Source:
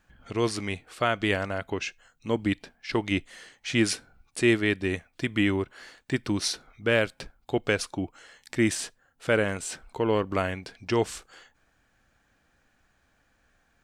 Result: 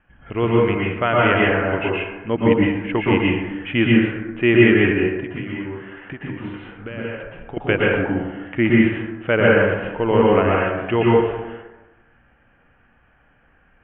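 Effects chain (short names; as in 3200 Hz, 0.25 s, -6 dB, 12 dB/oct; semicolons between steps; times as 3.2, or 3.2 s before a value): steep low-pass 3100 Hz 96 dB/oct; 4.91–7.57 compressor 6:1, threshold -37 dBFS, peak gain reduction 17.5 dB; plate-style reverb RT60 1.1 s, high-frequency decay 0.45×, pre-delay 0.105 s, DRR -4.5 dB; gain +4.5 dB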